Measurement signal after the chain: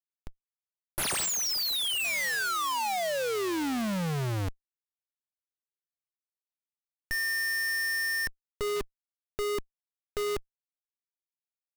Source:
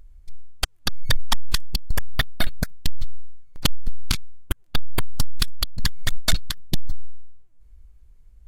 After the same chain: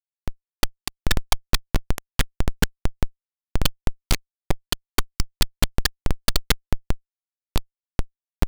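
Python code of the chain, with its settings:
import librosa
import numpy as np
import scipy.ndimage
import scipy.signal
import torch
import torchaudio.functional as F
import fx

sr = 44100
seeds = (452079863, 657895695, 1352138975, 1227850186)

y = fx.hpss(x, sr, part='percussive', gain_db=-6)
y = fx.echo_wet_highpass(y, sr, ms=1069, feedback_pct=50, hz=2500.0, wet_db=-14.0)
y = fx.schmitt(y, sr, flips_db=-36.0)
y = F.gain(torch.from_numpy(y), 2.5).numpy()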